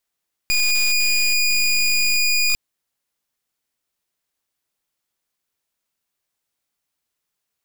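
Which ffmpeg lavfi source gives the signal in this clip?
-f lavfi -i "aevalsrc='0.133*(2*lt(mod(2450*t,1),0.2)-1)':d=2.05:s=44100"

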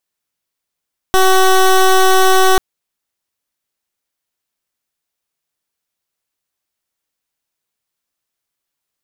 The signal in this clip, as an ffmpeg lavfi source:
-f lavfi -i "aevalsrc='0.355*(2*lt(mod(377*t,1),0.16)-1)':d=1.44:s=44100"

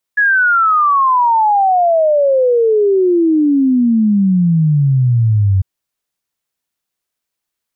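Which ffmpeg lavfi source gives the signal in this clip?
-f lavfi -i "aevalsrc='0.376*clip(min(t,5.45-t)/0.01,0,1)*sin(2*PI*1700*5.45/log(93/1700)*(exp(log(93/1700)*t/5.45)-1))':d=5.45:s=44100"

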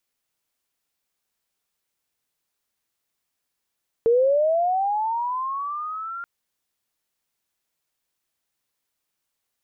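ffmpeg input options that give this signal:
-f lavfi -i "aevalsrc='pow(10,(-14-16*t/2.18)/20)*sin(2*PI*(450*t+950*t*t/(2*2.18)))':d=2.18:s=44100"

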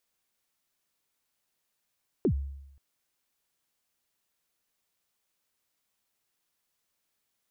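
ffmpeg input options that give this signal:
-f lavfi -i "aevalsrc='0.106*pow(10,-3*t/0.87)*sin(2*PI*(450*0.082/log(69/450)*(exp(log(69/450)*min(t,0.082)/0.082)-1)+69*max(t-0.082,0)))':d=0.53:s=44100"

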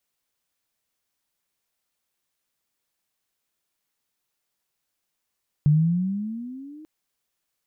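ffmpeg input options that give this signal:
-f lavfi -i "aevalsrc='pow(10,(-13-27.5*t/1.19)/20)*sin(2*PI*145*1.19/(13.5*log(2)/12)*(exp(13.5*log(2)/12*t/1.19)-1))':d=1.19:s=44100"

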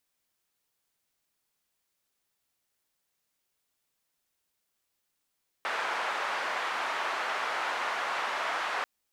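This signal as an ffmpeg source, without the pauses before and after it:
-f lavfi -i "anoisesrc=c=white:d=3.19:r=44100:seed=1,highpass=f=940,lowpass=f=1200,volume=-10.4dB"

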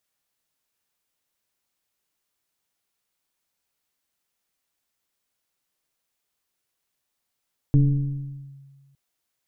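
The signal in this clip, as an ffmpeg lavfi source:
-f lavfi -i "aevalsrc='0.266*pow(10,-3*t/1.6)*sin(2*PI*138*t+0.69*clip(1-t/0.87,0,1)*sin(2*PI*1.09*138*t))':d=1.21:s=44100"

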